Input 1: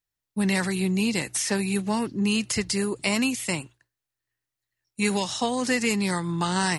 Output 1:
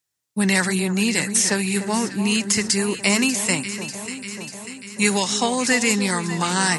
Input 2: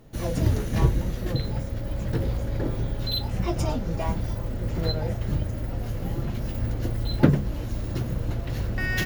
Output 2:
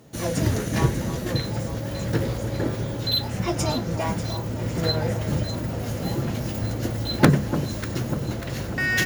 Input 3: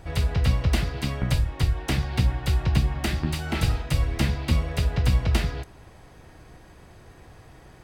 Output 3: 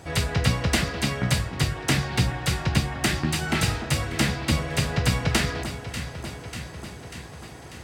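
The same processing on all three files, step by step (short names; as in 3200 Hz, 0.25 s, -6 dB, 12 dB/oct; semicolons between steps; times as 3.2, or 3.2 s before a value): HPF 110 Hz 12 dB/oct; bell 7500 Hz +7 dB 1.2 oct; in parallel at -3 dB: wrapped overs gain 6 dB; on the sum: dynamic EQ 1700 Hz, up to +4 dB, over -40 dBFS, Q 1.4; on a send: echo with dull and thin repeats by turns 0.296 s, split 1300 Hz, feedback 78%, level -10 dB; on the sum: vocal rider within 3 dB 2 s; gain -2 dB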